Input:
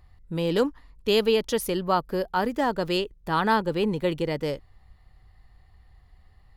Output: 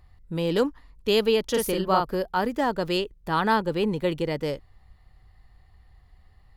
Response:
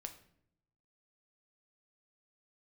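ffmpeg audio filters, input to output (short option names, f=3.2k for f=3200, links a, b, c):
-filter_complex "[0:a]asettb=1/sr,asplit=3[a][b][c];[a]atrim=end=1.504[d];[b]atrim=start=1.5:end=2.16,asetpts=PTS-STARTPTS,afade=t=in:d=0.004:c=qsin,afade=t=out:st=0.656:d=0.004:c=qsin,asplit=2[e][f];[f]adelay=42,volume=-2.5dB[g];[e][g]amix=inputs=2:normalize=0,atrim=end_sample=29106[h];[c]atrim=start=2.156[i];[d][h]acrossfade=d=0.004:c1=hsin:c2=qsin[j];[j][i]acrossfade=d=0.004:c1=qsin:c2=hsin"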